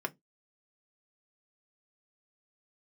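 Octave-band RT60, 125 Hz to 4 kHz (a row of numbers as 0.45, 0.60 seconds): 0.20, 0.25, 0.20, 0.15, 0.15, 0.15 seconds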